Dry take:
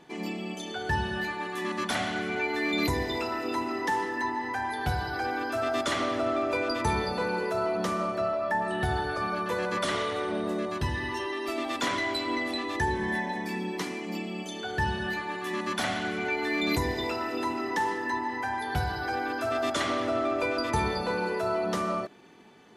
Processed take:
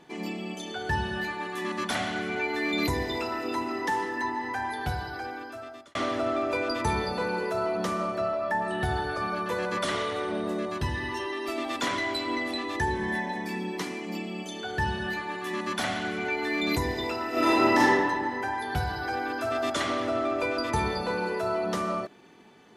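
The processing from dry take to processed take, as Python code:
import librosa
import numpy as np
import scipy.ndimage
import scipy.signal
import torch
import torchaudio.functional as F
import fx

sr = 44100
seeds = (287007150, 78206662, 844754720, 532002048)

y = fx.reverb_throw(x, sr, start_s=17.3, length_s=0.48, rt60_s=1.9, drr_db=-11.0)
y = fx.edit(y, sr, fx.fade_out_span(start_s=4.66, length_s=1.29), tone=tone)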